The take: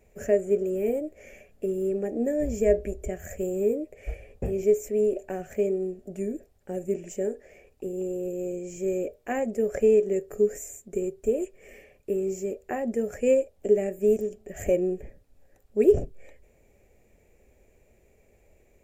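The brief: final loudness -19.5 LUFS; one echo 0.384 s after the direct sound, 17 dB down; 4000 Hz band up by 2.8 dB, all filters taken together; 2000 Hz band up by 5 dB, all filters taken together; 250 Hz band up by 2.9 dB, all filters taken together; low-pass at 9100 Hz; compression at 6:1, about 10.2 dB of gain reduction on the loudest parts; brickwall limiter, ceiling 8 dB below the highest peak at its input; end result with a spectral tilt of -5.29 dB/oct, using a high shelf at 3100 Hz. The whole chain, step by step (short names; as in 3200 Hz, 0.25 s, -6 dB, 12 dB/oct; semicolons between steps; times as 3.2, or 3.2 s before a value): LPF 9100 Hz; bell 250 Hz +4 dB; bell 2000 Hz +6.5 dB; high shelf 3100 Hz -7 dB; bell 4000 Hz +7 dB; compressor 6:1, threshold -22 dBFS; limiter -21 dBFS; echo 0.384 s -17 dB; gain +11.5 dB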